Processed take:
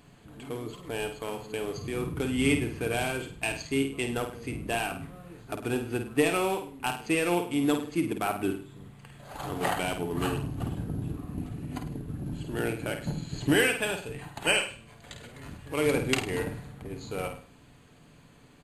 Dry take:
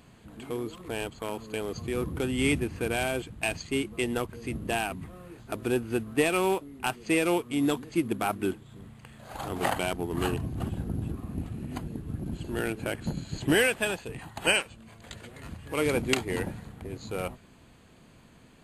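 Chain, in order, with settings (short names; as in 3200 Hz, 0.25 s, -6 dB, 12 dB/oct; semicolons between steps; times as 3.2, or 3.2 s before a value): comb 6.9 ms, depth 32%; flutter echo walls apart 8.8 m, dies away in 0.43 s; gain -1.5 dB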